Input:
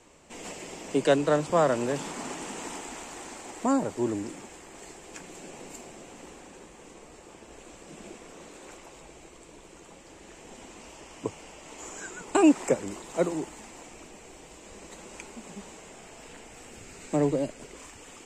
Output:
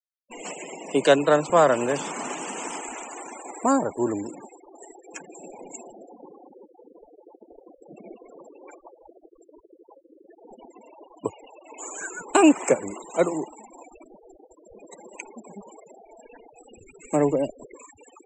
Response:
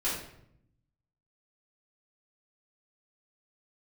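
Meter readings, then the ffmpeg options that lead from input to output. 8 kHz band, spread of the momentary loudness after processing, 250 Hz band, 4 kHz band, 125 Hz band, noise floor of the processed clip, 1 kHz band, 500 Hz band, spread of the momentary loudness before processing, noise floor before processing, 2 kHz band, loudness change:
+4.5 dB, 23 LU, +2.5 dB, +4.0 dB, 0.0 dB, -59 dBFS, +6.0 dB, +4.5 dB, 23 LU, -51 dBFS, +6.0 dB, +4.5 dB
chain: -af "lowshelf=f=330:g=-9,afftfilt=real='re*gte(hypot(re,im),0.01)':imag='im*gte(hypot(re,im),0.01)':win_size=1024:overlap=0.75,bandreject=f=1900:w=19,volume=2.37"

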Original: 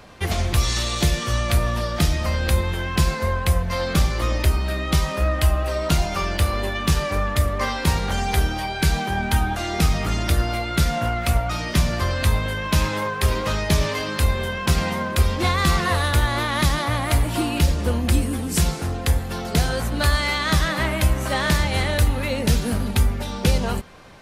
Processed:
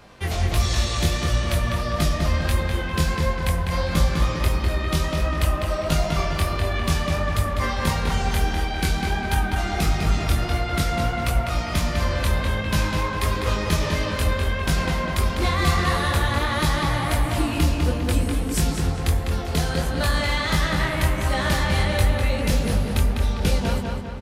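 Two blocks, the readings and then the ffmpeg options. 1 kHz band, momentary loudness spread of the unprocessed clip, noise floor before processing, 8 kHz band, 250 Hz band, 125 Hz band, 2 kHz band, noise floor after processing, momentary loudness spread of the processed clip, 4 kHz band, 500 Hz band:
-1.0 dB, 3 LU, -29 dBFS, -2.5 dB, -1.0 dB, -1.0 dB, -1.0 dB, -27 dBFS, 3 LU, -2.0 dB, -1.0 dB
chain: -filter_complex "[0:a]flanger=delay=18.5:depth=6.4:speed=1.5,asplit=2[s0][s1];[s1]adelay=201,lowpass=f=3900:p=1,volume=0.708,asplit=2[s2][s3];[s3]adelay=201,lowpass=f=3900:p=1,volume=0.53,asplit=2[s4][s5];[s5]adelay=201,lowpass=f=3900:p=1,volume=0.53,asplit=2[s6][s7];[s7]adelay=201,lowpass=f=3900:p=1,volume=0.53,asplit=2[s8][s9];[s9]adelay=201,lowpass=f=3900:p=1,volume=0.53,asplit=2[s10][s11];[s11]adelay=201,lowpass=f=3900:p=1,volume=0.53,asplit=2[s12][s13];[s13]adelay=201,lowpass=f=3900:p=1,volume=0.53[s14];[s0][s2][s4][s6][s8][s10][s12][s14]amix=inputs=8:normalize=0"

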